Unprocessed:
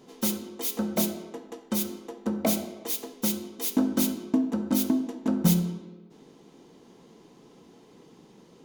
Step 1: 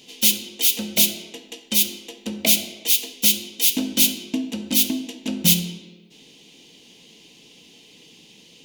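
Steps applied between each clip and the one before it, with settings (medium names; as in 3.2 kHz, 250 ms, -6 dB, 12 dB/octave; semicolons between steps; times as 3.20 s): resonant high shelf 1.9 kHz +13 dB, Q 3; band-stop 380 Hz, Q 12; trim -1 dB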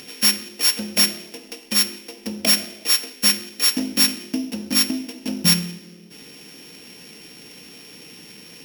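sorted samples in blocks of 8 samples; in parallel at -2 dB: upward compressor, threshold -26 dBFS; on the sum: trim -5 dB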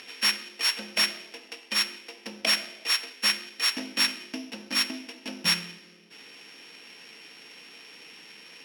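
band-pass filter 1.8 kHz, Q 0.62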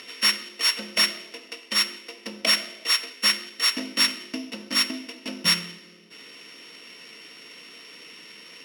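comb of notches 810 Hz; trim +4 dB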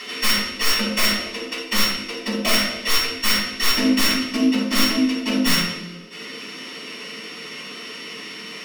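overload inside the chain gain 25 dB; simulated room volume 480 m³, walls furnished, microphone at 9.1 m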